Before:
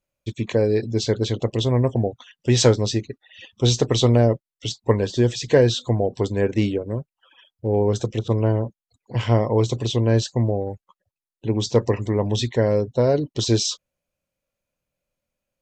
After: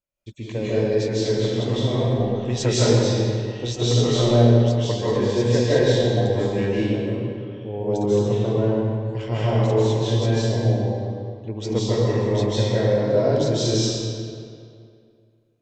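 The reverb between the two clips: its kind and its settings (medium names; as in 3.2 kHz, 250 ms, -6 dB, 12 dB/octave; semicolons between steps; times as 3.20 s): algorithmic reverb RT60 2.3 s, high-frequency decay 0.75×, pre-delay 115 ms, DRR -10 dB; trim -10 dB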